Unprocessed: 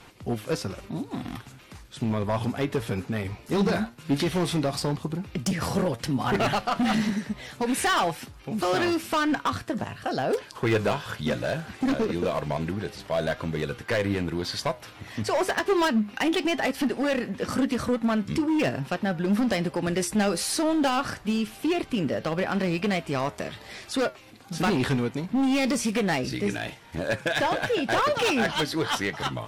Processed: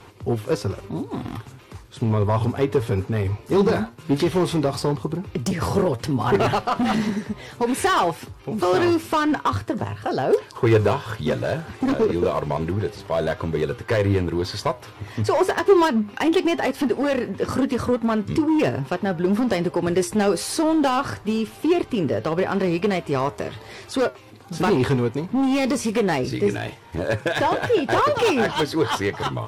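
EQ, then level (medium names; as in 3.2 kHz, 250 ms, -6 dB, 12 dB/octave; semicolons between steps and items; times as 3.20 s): fifteen-band graphic EQ 100 Hz +11 dB, 400 Hz +9 dB, 1 kHz +6 dB; 0.0 dB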